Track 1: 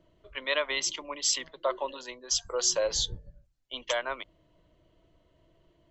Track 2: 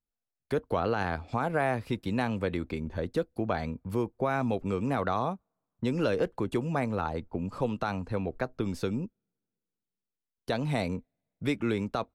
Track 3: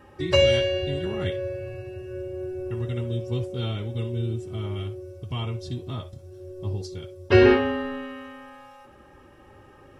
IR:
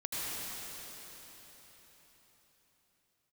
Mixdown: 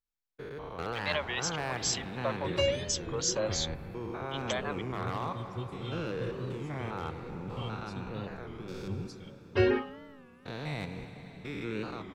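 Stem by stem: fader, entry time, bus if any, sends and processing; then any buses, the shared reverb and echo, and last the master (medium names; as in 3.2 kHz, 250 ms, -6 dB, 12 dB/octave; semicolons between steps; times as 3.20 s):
-4.5 dB, 0.60 s, no send, none
-2.0 dB, 0.00 s, send -10.5 dB, spectrogram pixelated in time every 200 ms; fifteen-band graphic EQ 100 Hz -7 dB, 250 Hz -9 dB, 630 Hz -8 dB, 10 kHz -11 dB; wavefolder -25 dBFS
-9.0 dB, 2.25 s, no send, reverb removal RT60 1.9 s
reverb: on, RT60 4.5 s, pre-delay 73 ms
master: warped record 33 1/3 rpm, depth 160 cents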